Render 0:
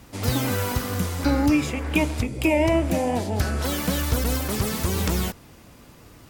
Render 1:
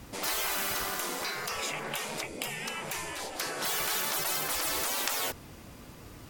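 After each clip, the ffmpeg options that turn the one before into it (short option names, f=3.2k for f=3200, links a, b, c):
-af "afftfilt=real='re*lt(hypot(re,im),0.1)':imag='im*lt(hypot(re,im),0.1)':win_size=1024:overlap=0.75"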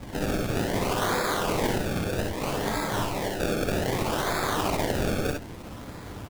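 -filter_complex "[0:a]alimiter=limit=-23.5dB:level=0:latency=1:release=11,acrusher=samples=30:mix=1:aa=0.000001:lfo=1:lforange=30:lforate=0.63,asplit=2[a][b];[b]aecho=0:1:57|67:0.501|0.501[c];[a][c]amix=inputs=2:normalize=0,volume=7dB"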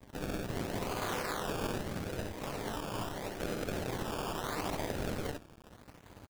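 -af "acrusher=samples=15:mix=1:aa=0.000001:lfo=1:lforange=15:lforate=0.77,aeval=exprs='sgn(val(0))*max(abs(val(0))-0.00944,0)':c=same,volume=-8.5dB"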